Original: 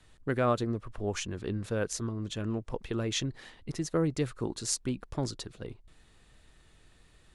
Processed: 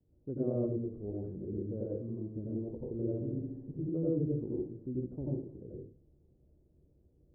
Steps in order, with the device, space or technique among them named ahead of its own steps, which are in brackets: next room (low-pass 460 Hz 24 dB/octave; reverberation RT60 0.45 s, pre-delay 81 ms, DRR -5.5 dB); high-pass 96 Hz 6 dB/octave; 2.99–3.89 s: flutter echo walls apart 11.7 m, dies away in 1.1 s; trim -6.5 dB

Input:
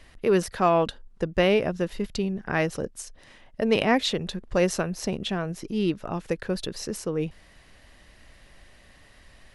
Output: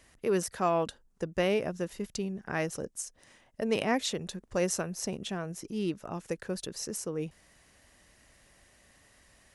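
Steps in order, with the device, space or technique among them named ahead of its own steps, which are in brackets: budget condenser microphone (high-pass 77 Hz 6 dB/octave; resonant high shelf 5.2 kHz +6.5 dB, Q 1.5); trim -6.5 dB

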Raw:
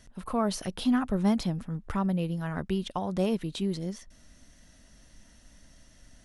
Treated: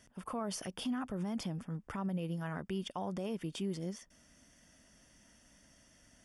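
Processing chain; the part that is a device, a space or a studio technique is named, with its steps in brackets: PA system with an anti-feedback notch (high-pass 150 Hz 6 dB/octave; Butterworth band-stop 4 kHz, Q 5.5; peak limiter -26 dBFS, peak gain reduction 11 dB); trim -3.5 dB

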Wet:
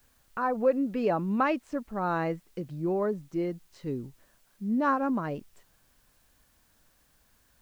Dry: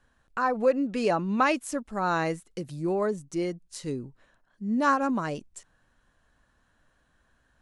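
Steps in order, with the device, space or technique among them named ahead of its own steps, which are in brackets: cassette deck with a dirty head (tape spacing loss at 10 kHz 29 dB; wow and flutter 26 cents; white noise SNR 37 dB)

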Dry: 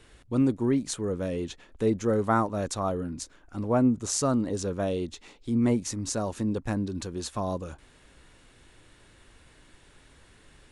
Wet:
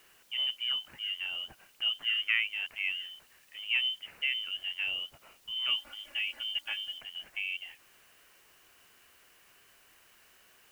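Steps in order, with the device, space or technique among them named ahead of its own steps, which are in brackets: scrambled radio voice (band-pass 350–3000 Hz; frequency inversion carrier 3.3 kHz; white noise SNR 27 dB); 5.68–6.98 s: comb 3.5 ms, depth 94%; trim -3.5 dB

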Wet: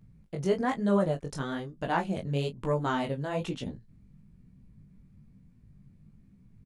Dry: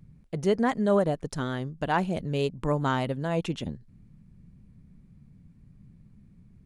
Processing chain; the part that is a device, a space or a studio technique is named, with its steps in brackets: double-tracked vocal (doubling 20 ms -10 dB; chorus 1.1 Hz, delay 15.5 ms, depth 6.6 ms)

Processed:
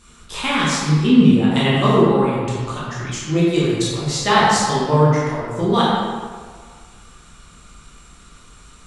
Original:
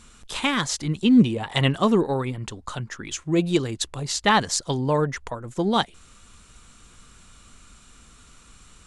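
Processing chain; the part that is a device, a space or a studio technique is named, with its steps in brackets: stairwell (reverberation RT60 1.7 s, pre-delay 14 ms, DRR -8 dB); trim -2.5 dB

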